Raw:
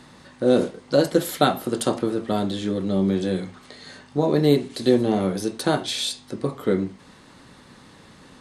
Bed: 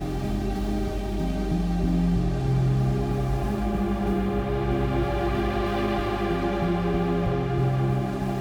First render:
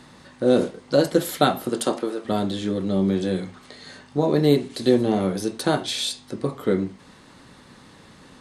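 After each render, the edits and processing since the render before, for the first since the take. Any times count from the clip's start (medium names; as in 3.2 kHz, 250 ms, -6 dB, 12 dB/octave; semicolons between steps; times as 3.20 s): 1.69–2.24 s: high-pass 130 Hz -> 500 Hz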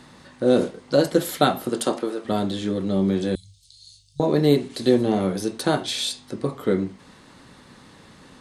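3.35–4.20 s: inverse Chebyshev band-stop 230–1800 Hz, stop band 50 dB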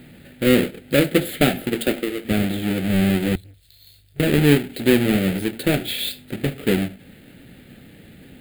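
square wave that keeps the level; static phaser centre 2.5 kHz, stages 4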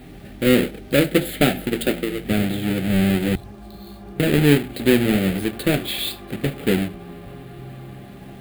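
add bed -14 dB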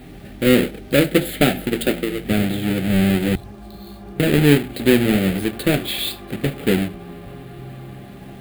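trim +1.5 dB; peak limiter -2 dBFS, peak gain reduction 1 dB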